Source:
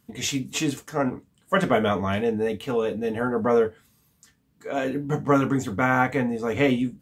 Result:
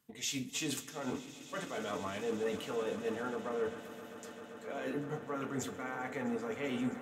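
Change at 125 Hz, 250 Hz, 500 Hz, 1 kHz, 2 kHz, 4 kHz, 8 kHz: -17.5 dB, -14.0 dB, -13.5 dB, -16.0 dB, -14.0 dB, -9.0 dB, no reading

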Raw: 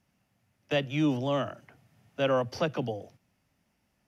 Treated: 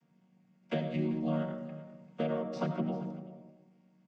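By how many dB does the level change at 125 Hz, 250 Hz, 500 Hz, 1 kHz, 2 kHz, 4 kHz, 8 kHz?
-2.5 dB, -2.0 dB, -6.5 dB, -6.5 dB, -11.0 dB, -13.0 dB, no reading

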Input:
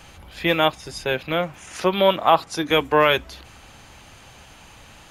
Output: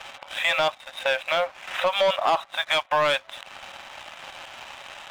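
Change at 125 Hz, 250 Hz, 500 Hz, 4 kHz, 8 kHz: -15.5 dB, -18.0 dB, -4.5 dB, -1.0 dB, -3.5 dB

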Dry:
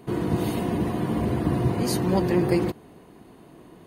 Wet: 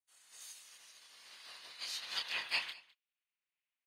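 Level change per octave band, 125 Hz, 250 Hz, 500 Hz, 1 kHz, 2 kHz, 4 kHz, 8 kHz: under -40 dB, under -40 dB, -36.0 dB, -20.5 dB, -3.5 dB, -0.5 dB, -10.5 dB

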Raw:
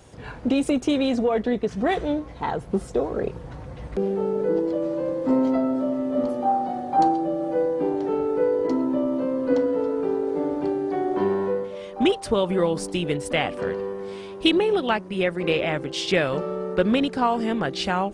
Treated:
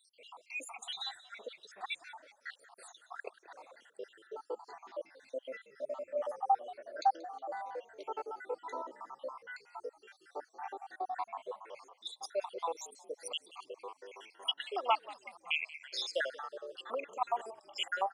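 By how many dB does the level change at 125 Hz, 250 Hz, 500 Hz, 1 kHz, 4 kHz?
under -40 dB, -37.0 dB, -19.5 dB, -10.0 dB, -9.0 dB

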